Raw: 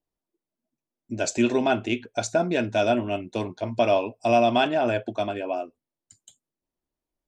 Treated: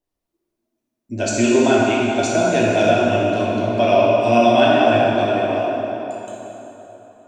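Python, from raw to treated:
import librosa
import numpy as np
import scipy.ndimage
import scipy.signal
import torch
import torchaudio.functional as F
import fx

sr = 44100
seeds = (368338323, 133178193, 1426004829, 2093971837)

y = fx.rev_plate(x, sr, seeds[0], rt60_s=3.7, hf_ratio=0.7, predelay_ms=0, drr_db=-5.5)
y = y * librosa.db_to_amplitude(1.5)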